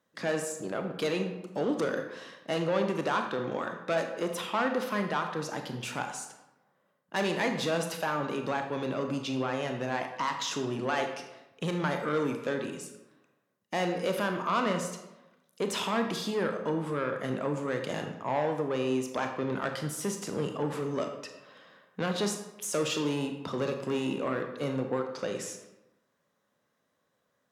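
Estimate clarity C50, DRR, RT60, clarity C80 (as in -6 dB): 6.5 dB, 4.5 dB, 1.0 s, 9.0 dB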